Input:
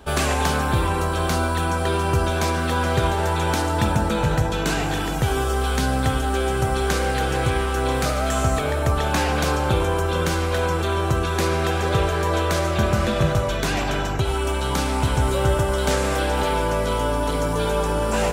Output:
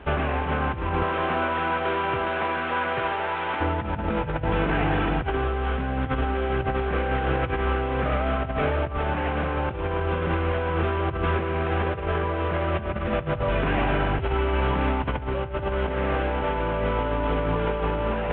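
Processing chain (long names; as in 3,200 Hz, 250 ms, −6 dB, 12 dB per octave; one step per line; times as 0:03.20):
variable-slope delta modulation 16 kbit/s
0:01.02–0:03.60: high-pass filter 390 Hz → 1,200 Hz 6 dB per octave
compressor whose output falls as the input rises −24 dBFS, ratio −0.5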